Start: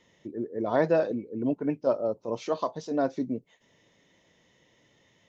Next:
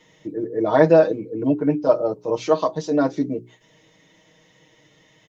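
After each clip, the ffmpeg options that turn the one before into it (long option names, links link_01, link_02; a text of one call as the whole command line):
ffmpeg -i in.wav -af "bandreject=frequency=60:width_type=h:width=6,bandreject=frequency=120:width_type=h:width=6,bandreject=frequency=180:width_type=h:width=6,bandreject=frequency=240:width_type=h:width=6,bandreject=frequency=300:width_type=h:width=6,bandreject=frequency=360:width_type=h:width=6,bandreject=frequency=420:width_type=h:width=6,aecho=1:1:6.4:0.88,volume=6dB" out.wav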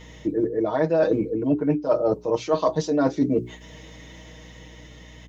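ffmpeg -i in.wav -af "dynaudnorm=framelen=200:gausssize=13:maxgain=4dB,aeval=exprs='val(0)+0.00224*(sin(2*PI*60*n/s)+sin(2*PI*2*60*n/s)/2+sin(2*PI*3*60*n/s)/3+sin(2*PI*4*60*n/s)/4+sin(2*PI*5*60*n/s)/5)':channel_layout=same,areverse,acompressor=threshold=-26dB:ratio=8,areverse,volume=8dB" out.wav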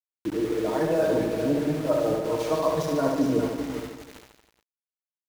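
ffmpeg -i in.wav -filter_complex "[0:a]asplit=2[link_01][link_02];[link_02]aecho=0:1:400|800|1200:0.376|0.105|0.0295[link_03];[link_01][link_03]amix=inputs=2:normalize=0,aeval=exprs='val(0)*gte(abs(val(0)),0.0299)':channel_layout=same,asplit=2[link_04][link_05];[link_05]aecho=0:1:70|147|231.7|324.9|427.4:0.631|0.398|0.251|0.158|0.1[link_06];[link_04][link_06]amix=inputs=2:normalize=0,volume=-4.5dB" out.wav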